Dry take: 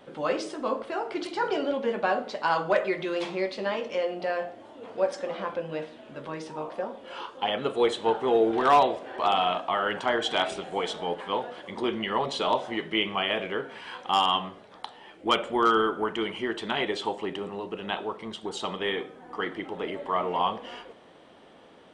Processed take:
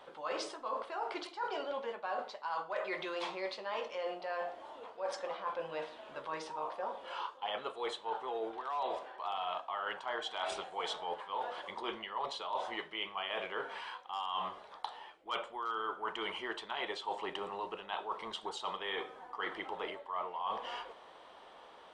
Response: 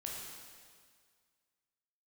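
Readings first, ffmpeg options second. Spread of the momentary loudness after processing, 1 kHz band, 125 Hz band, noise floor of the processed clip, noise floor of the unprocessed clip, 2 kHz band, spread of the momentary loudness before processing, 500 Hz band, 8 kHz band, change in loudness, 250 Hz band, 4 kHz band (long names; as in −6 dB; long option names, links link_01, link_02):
6 LU, −10.0 dB, below −15 dB, −56 dBFS, −53 dBFS, −9.5 dB, 14 LU, −13.0 dB, −8.5 dB, −11.5 dB, −17.5 dB, −10.5 dB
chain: -af "equalizer=frequency=125:width_type=o:width=1:gain=-11,equalizer=frequency=250:width_type=o:width=1:gain=-9,equalizer=frequency=1000:width_type=o:width=1:gain=9,equalizer=frequency=4000:width_type=o:width=1:gain=4,areverse,acompressor=threshold=-30dB:ratio=12,areverse,volume=-4.5dB"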